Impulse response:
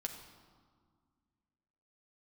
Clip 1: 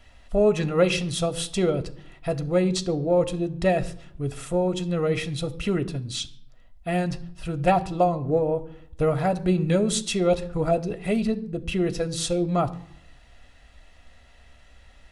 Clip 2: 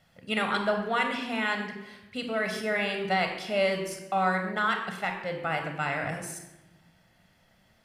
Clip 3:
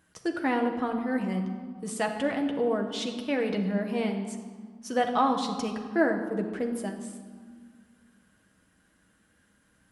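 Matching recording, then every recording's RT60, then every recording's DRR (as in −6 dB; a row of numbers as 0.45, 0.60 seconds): 3; 0.70, 1.0, 1.8 seconds; 8.0, 4.0, 2.5 decibels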